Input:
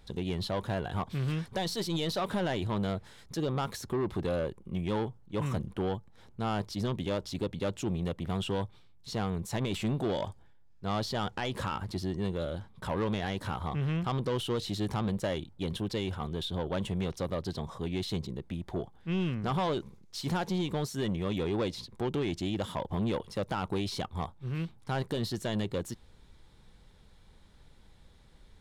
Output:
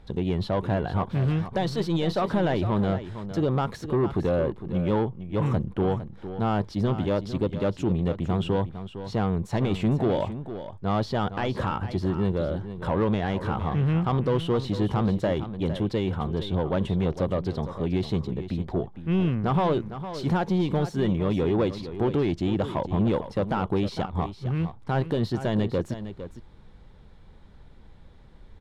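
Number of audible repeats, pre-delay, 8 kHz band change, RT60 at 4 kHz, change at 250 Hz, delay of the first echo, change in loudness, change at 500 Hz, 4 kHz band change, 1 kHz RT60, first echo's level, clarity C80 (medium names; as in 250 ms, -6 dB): 1, no reverb, no reading, no reverb, +7.5 dB, 457 ms, +7.0 dB, +7.5 dB, -1.0 dB, no reverb, -11.5 dB, no reverb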